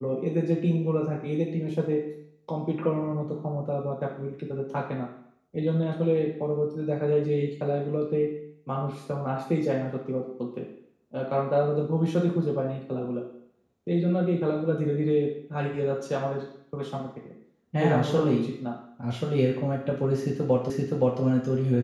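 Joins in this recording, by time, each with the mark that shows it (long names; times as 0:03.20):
0:20.70: the same again, the last 0.52 s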